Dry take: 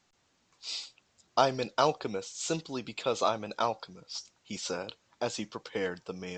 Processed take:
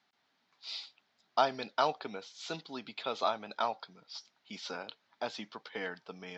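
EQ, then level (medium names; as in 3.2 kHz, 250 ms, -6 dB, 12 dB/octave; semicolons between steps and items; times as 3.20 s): cabinet simulation 280–4400 Hz, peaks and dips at 340 Hz -9 dB, 510 Hz -10 dB, 1.1 kHz -4 dB, 2.7 kHz -5 dB; 0.0 dB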